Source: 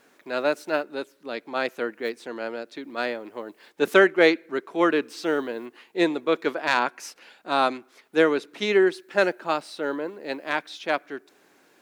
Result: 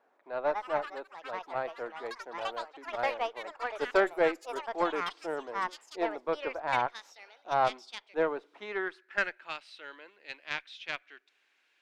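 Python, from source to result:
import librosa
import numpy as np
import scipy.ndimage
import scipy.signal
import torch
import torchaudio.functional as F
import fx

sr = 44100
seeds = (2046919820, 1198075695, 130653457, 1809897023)

y = fx.filter_sweep_bandpass(x, sr, from_hz=780.0, to_hz=2700.0, start_s=8.43, end_s=9.55, q=1.9)
y = fx.cheby_harmonics(y, sr, harmonics=(3, 4), levels_db=(-19, -26), full_scale_db=-12.5)
y = fx.echo_pitch(y, sr, ms=237, semitones=6, count=3, db_per_echo=-6.0)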